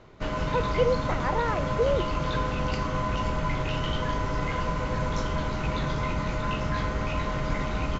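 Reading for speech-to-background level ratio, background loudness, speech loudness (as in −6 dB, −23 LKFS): 0.5 dB, −29.5 LKFS, −29.0 LKFS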